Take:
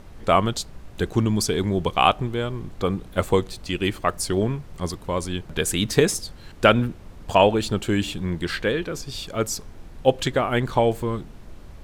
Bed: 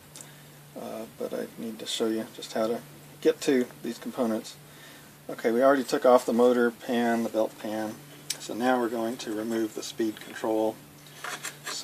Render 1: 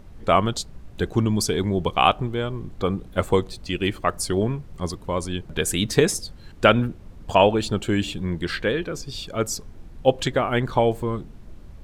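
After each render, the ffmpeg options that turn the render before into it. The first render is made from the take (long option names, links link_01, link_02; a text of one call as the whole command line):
ffmpeg -i in.wav -af "afftdn=noise_reduction=6:noise_floor=-43" out.wav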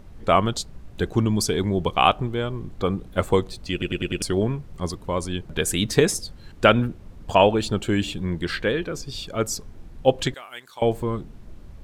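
ffmpeg -i in.wav -filter_complex "[0:a]asettb=1/sr,asplit=3[link_01][link_02][link_03];[link_01]atrim=end=10.344[link_04];[link_02]atrim=start=10.34:end=10.82,asetpts=PTS-STARTPTS,afade=type=in:duration=0.004:curve=qsin,afade=type=out:start_time=0.476:duration=0.004:curve=qsin,aderivative[link_05];[link_03]atrim=start=10.816[link_06];[link_04][link_05]acrossfade=duration=0.004:curve1=hsin:curve2=qsin[link_07];[link_07][link_06]acrossfade=duration=0.004:curve1=qsin:curve2=hsin,asplit=6[link_08][link_09][link_10][link_11][link_12][link_13];[link_08]atrim=end=3.822[link_14];[link_09]atrim=start=3.718:end=3.822[link_15];[link_10]atrim=start=3.718:end=3.822[link_16];[link_11]atrim=start=3.718:end=3.822[link_17];[link_12]atrim=start=3.718:end=3.822[link_18];[link_13]atrim=start=4.218[link_19];[link_14][link_15]acrossfade=duration=0.004:curve1=hsin:curve2=hsin[link_20];[link_20][link_16]acrossfade=duration=0.004:curve1=hsin:curve2=hsin[link_21];[link_21][link_17]acrossfade=duration=0.004:curve1=hsin:curve2=hsin[link_22];[link_22][link_18]acrossfade=duration=0.004:curve1=hsin:curve2=hsin[link_23];[link_23][link_19]acrossfade=duration=0.004:curve1=hsin:curve2=hsin" out.wav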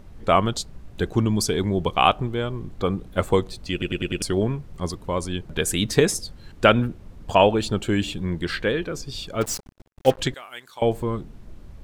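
ffmpeg -i in.wav -filter_complex "[0:a]asettb=1/sr,asplit=3[link_01][link_02][link_03];[link_01]atrim=end=9.414[link_04];[link_02]atrim=start=9.41:end=10.18,asetpts=PTS-STARTPTS,afade=type=in:duration=0.004:curve=qsin,afade=type=out:start_time=0.766:duration=0.004:curve=qsin,acrusher=bits=4:mix=0:aa=0.5[link_05];[link_03]atrim=start=10.176[link_06];[link_04][link_05]acrossfade=duration=0.004:curve1=hsin:curve2=qsin[link_07];[link_07][link_06]acrossfade=duration=0.004:curve1=qsin:curve2=hsin" out.wav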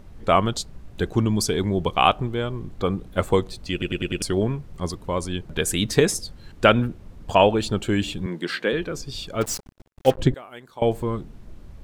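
ffmpeg -i in.wav -filter_complex "[0:a]asettb=1/sr,asplit=3[link_01][link_02][link_03];[link_01]atrim=end=8.264[link_04];[link_02]atrim=start=8.26:end=8.73,asetpts=PTS-STARTPTS,afade=type=in:duration=0.004:curve=qsin,afade=type=out:start_time=0.466:duration=0.004:curve=qsin,highpass=frequency=190:width=0.5412,highpass=frequency=190:width=1.3066[link_05];[link_03]atrim=start=8.726[link_06];[link_04][link_05]acrossfade=duration=0.004:curve1=hsin:curve2=qsin[link_07];[link_07][link_06]acrossfade=duration=0.004:curve1=qsin:curve2=hsin,asplit=3[link_08][link_09][link_10];[link_08]afade=type=out:start_time=10.14:duration=0.02[link_11];[link_09]tiltshelf=frequency=910:gain=9,afade=type=in:start_time=10.14:duration=0.02,afade=type=out:start_time=10.81:duration=0.02[link_12];[link_10]afade=type=in:start_time=10.81:duration=0.02[link_13];[link_11][link_12][link_13]amix=inputs=3:normalize=0" out.wav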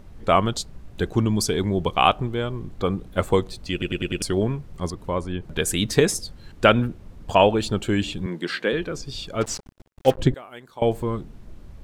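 ffmpeg -i in.wav -filter_complex "[0:a]asettb=1/sr,asplit=3[link_01][link_02][link_03];[link_01]atrim=end=4.904[link_04];[link_02]atrim=start=4.9:end=5.47,asetpts=PTS-STARTPTS,afade=type=in:duration=0.004:curve=qsin,afade=type=out:start_time=0.566:duration=0.004:curve=qsin,acrossover=split=2500[link_05][link_06];[link_06]acompressor=threshold=-49dB:ratio=4:attack=1:release=60[link_07];[link_05][link_07]amix=inputs=2:normalize=0[link_08];[link_03]atrim=start=5.466[link_09];[link_04][link_08]acrossfade=duration=0.004:curve1=hsin:curve2=qsin[link_10];[link_10][link_09]acrossfade=duration=0.004:curve1=qsin:curve2=hsin,asettb=1/sr,asplit=3[link_11][link_12][link_13];[link_11]atrim=end=7.924[link_14];[link_12]atrim=start=7.92:end=10.08,asetpts=PTS-STARTPTS,afade=type=in:duration=0.004:curve=qsin,afade=type=out:start_time=2.156:duration=0.004:curve=qsin,acrossover=split=8900[link_15][link_16];[link_16]acompressor=threshold=-57dB:ratio=4:attack=1:release=60[link_17];[link_15][link_17]amix=inputs=2:normalize=0[link_18];[link_13]atrim=start=10.076[link_19];[link_14][link_18]acrossfade=duration=0.004:curve1=hsin:curve2=qsin[link_20];[link_20][link_19]acrossfade=duration=0.004:curve1=qsin:curve2=hsin" out.wav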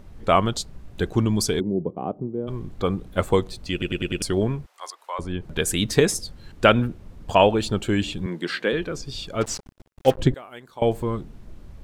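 ffmpeg -i in.wav -filter_complex "[0:a]asplit=3[link_01][link_02][link_03];[link_01]afade=type=out:start_time=1.59:duration=0.02[link_04];[link_02]asuperpass=centerf=270:order=4:qfactor=0.82,afade=type=in:start_time=1.59:duration=0.02,afade=type=out:start_time=2.47:duration=0.02[link_05];[link_03]afade=type=in:start_time=2.47:duration=0.02[link_06];[link_04][link_05][link_06]amix=inputs=3:normalize=0,asettb=1/sr,asplit=3[link_07][link_08][link_09];[link_07]atrim=end=4.664[link_10];[link_08]atrim=start=4.66:end=5.19,asetpts=PTS-STARTPTS,afade=type=in:duration=0.004:curve=qsin,afade=type=out:start_time=0.526:duration=0.004:curve=qsin,highpass=frequency=740:width=0.5412,highpass=frequency=740:width=1.3066[link_11];[link_09]atrim=start=5.186[link_12];[link_10][link_11]acrossfade=duration=0.004:curve1=hsin:curve2=qsin[link_13];[link_13][link_12]acrossfade=duration=0.004:curve1=qsin:curve2=hsin" out.wav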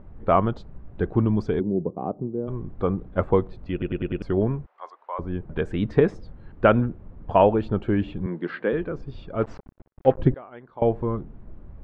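ffmpeg -i in.wav -af "lowpass=1500,aemphasis=mode=reproduction:type=50kf" out.wav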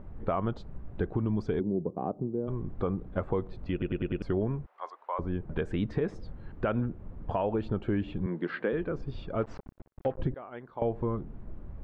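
ffmpeg -i in.wav -af "alimiter=limit=-13.5dB:level=0:latency=1:release=106,acompressor=threshold=-30dB:ratio=2" out.wav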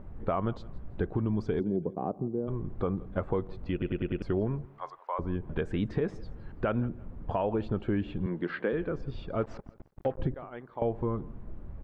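ffmpeg -i in.wav -af "aecho=1:1:167|334:0.0794|0.0246" out.wav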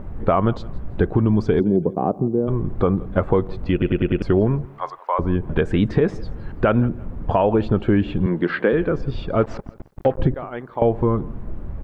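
ffmpeg -i in.wav -af "volume=12dB" out.wav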